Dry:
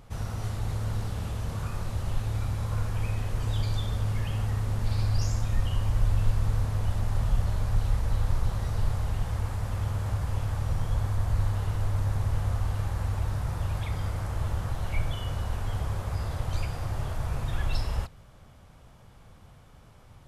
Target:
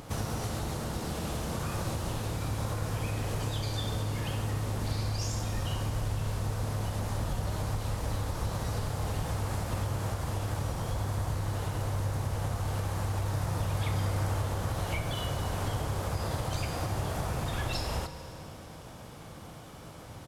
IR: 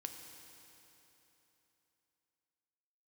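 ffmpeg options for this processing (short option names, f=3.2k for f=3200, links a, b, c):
-filter_complex "[0:a]highpass=f=350:p=1,equalizer=f=1.7k:w=0.41:g=-7.5,acompressor=threshold=-45dB:ratio=5,asplit=3[a][b][c];[b]asetrate=22050,aresample=44100,atempo=2,volume=-15dB[d];[c]asetrate=58866,aresample=44100,atempo=0.749154,volume=-12dB[e];[a][d][e]amix=inputs=3:normalize=0,asplit=2[f][g];[1:a]atrim=start_sample=2205,highshelf=f=9.9k:g=-8.5[h];[g][h]afir=irnorm=-1:irlink=0,volume=5.5dB[i];[f][i]amix=inputs=2:normalize=0,volume=8.5dB"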